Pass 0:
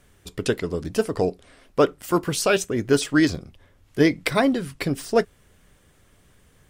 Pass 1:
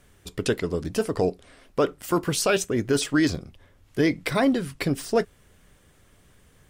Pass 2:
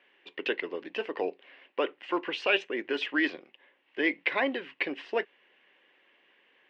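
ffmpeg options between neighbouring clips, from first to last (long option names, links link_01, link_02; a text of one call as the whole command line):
ffmpeg -i in.wav -af "alimiter=limit=-12dB:level=0:latency=1:release=20" out.wav
ffmpeg -i in.wav -af "highpass=frequency=380:width=0.5412,highpass=frequency=380:width=1.3066,equalizer=frequency=440:width_type=q:width=4:gain=-7,equalizer=frequency=660:width_type=q:width=4:gain=-8,equalizer=frequency=1300:width_type=q:width=4:gain=-10,equalizer=frequency=1900:width_type=q:width=4:gain=4,equalizer=frequency=2800:width_type=q:width=4:gain=8,lowpass=frequency=2900:width=0.5412,lowpass=frequency=2900:width=1.3066" out.wav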